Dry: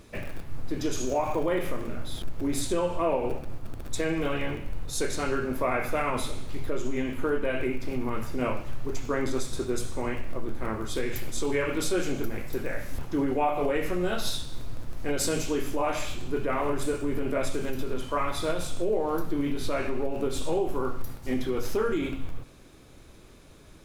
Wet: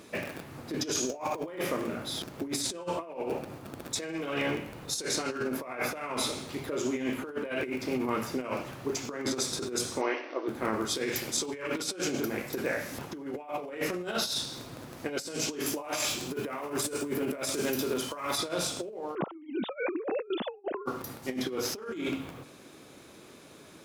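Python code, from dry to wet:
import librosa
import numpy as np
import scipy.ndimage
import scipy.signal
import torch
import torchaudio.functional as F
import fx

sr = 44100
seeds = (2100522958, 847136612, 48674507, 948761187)

y = fx.brickwall_bandpass(x, sr, low_hz=260.0, high_hz=6200.0, at=(10.0, 10.47), fade=0.02)
y = fx.high_shelf(y, sr, hz=8300.0, db=11.5, at=(15.66, 18.38))
y = fx.sine_speech(y, sr, at=(19.15, 20.86))
y = scipy.signal.sosfilt(scipy.signal.butter(2, 190.0, 'highpass', fs=sr, output='sos'), y)
y = fx.dynamic_eq(y, sr, hz=5300.0, q=2.0, threshold_db=-55.0, ratio=4.0, max_db=7)
y = fx.over_compress(y, sr, threshold_db=-32.0, ratio=-0.5)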